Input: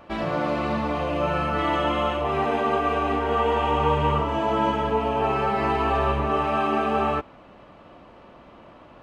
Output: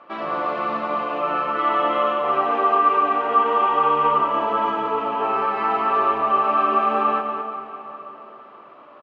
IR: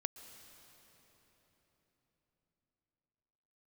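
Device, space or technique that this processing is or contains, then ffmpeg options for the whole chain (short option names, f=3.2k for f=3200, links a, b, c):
station announcement: -filter_complex "[0:a]highpass=310,lowpass=3.7k,equalizer=f=1.2k:t=o:w=0.33:g=11,aecho=1:1:90.38|209.9:0.251|0.398[a];[1:a]atrim=start_sample=2205[b];[a][b]afir=irnorm=-1:irlink=0"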